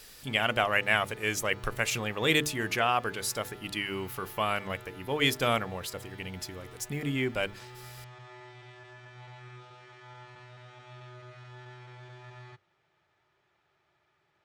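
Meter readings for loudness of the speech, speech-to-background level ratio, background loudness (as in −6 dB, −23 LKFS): −29.5 LKFS, 20.0 dB, −49.5 LKFS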